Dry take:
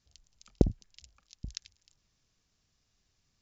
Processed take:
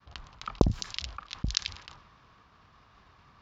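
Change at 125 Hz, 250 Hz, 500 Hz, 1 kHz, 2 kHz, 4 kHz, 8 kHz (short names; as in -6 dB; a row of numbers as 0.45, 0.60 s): +2.5 dB, +1.5 dB, +2.5 dB, +15.0 dB, +19.0 dB, +15.0 dB, n/a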